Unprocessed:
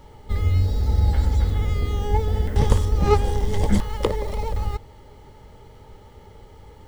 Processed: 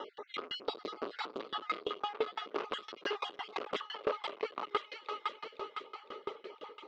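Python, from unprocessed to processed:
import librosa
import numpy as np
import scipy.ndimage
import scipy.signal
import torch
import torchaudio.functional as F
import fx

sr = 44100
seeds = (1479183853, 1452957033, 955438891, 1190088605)

p1 = fx.spec_dropout(x, sr, seeds[0], share_pct=36)
p2 = fx.dereverb_blind(p1, sr, rt60_s=0.93)
p3 = p2 + fx.echo_wet_highpass(p2, sr, ms=507, feedback_pct=54, hz=1500.0, wet_db=-7.0, dry=0)
p4 = 10.0 ** (-32.0 / 20.0) * np.tanh(p3 / 10.0 ** (-32.0 / 20.0))
p5 = fx.cabinet(p4, sr, low_hz=350.0, low_slope=24, high_hz=4000.0, hz=(400.0, 840.0, 1200.0, 1800.0, 2800.0), db=(4, -6, 10, -4, 5))
p6 = fx.rider(p5, sr, range_db=5, speed_s=0.5)
p7 = p5 + (p6 * librosa.db_to_amplitude(3.0))
p8 = fx.tremolo_decay(p7, sr, direction='decaying', hz=5.9, depth_db=26)
y = p8 * librosa.db_to_amplitude(3.0)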